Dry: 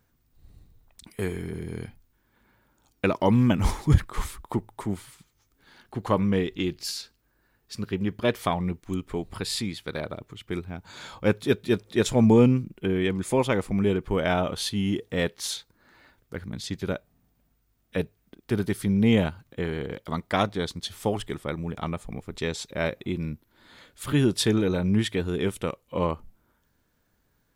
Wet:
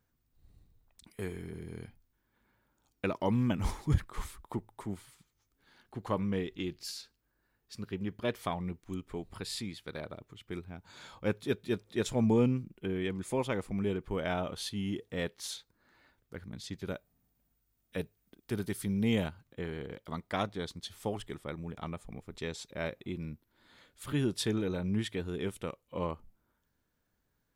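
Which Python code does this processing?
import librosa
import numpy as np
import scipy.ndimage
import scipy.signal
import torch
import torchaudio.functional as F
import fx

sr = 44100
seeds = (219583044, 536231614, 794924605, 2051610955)

y = fx.high_shelf(x, sr, hz=fx.line((16.87, 7100.0), (19.27, 4500.0)), db=8.0, at=(16.87, 19.27), fade=0.02)
y = y * 10.0 ** (-9.0 / 20.0)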